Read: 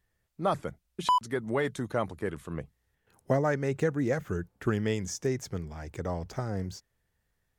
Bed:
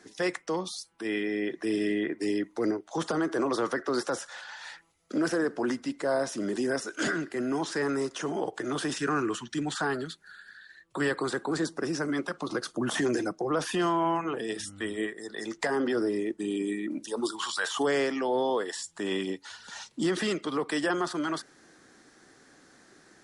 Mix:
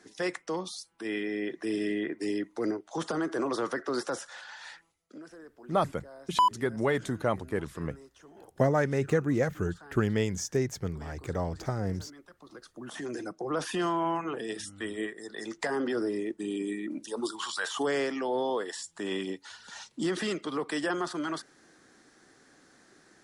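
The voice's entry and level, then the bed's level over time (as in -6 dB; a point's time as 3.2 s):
5.30 s, +1.5 dB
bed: 4.86 s -2.5 dB
5.26 s -22 dB
12.21 s -22 dB
13.58 s -2.5 dB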